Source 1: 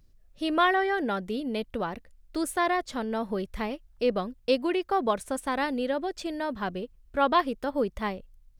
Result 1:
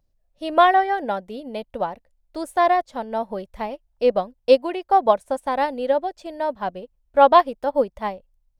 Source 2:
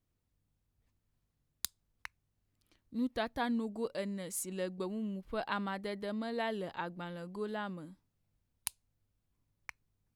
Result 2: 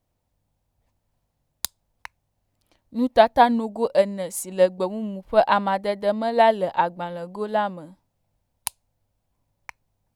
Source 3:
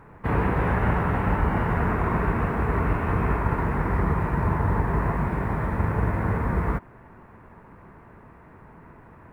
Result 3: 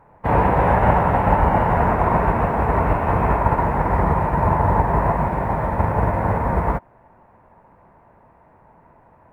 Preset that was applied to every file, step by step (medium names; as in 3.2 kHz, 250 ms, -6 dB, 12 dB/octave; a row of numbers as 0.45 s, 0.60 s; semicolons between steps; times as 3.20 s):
high-order bell 710 Hz +9 dB 1.1 oct; upward expansion 1.5:1, over -41 dBFS; peak normalisation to -1.5 dBFS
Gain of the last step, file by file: +4.5 dB, +14.5 dB, +5.0 dB